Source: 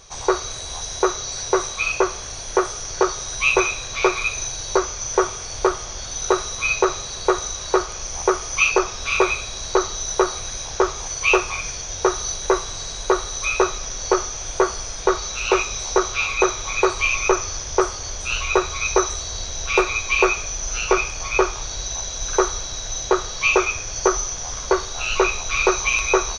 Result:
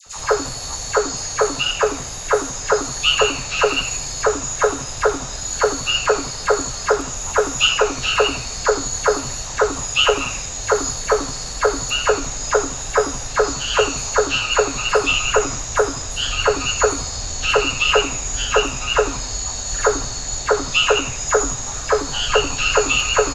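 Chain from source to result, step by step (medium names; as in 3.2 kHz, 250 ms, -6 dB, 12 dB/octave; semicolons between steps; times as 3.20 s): phase dispersion lows, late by 75 ms, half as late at 1.1 kHz; frequency-shifting echo 95 ms, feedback 47%, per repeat -130 Hz, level -13 dB; tape speed +13%; trim +2 dB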